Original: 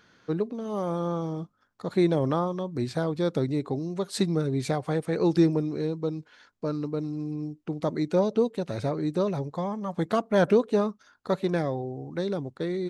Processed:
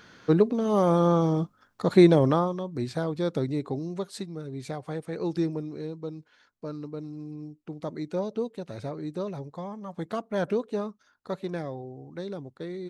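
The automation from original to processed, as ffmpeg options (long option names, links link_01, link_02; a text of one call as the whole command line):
ffmpeg -i in.wav -af "volume=14dB,afade=type=out:start_time=1.89:duration=0.71:silence=0.354813,afade=type=out:start_time=3.96:duration=0.29:silence=0.266073,afade=type=in:start_time=4.25:duration=0.6:silence=0.473151" out.wav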